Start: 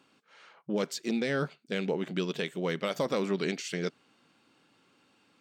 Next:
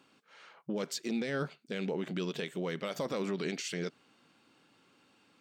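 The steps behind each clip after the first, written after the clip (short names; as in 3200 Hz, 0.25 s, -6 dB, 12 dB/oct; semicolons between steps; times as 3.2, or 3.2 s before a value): limiter -25.5 dBFS, peak gain reduction 6 dB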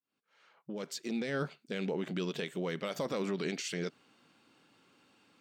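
opening faded in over 1.38 s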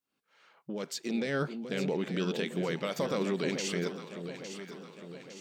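echo with dull and thin repeats by turns 0.429 s, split 800 Hz, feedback 72%, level -7.5 dB; gain +3 dB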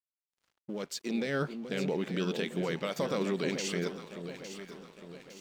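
crossover distortion -56.5 dBFS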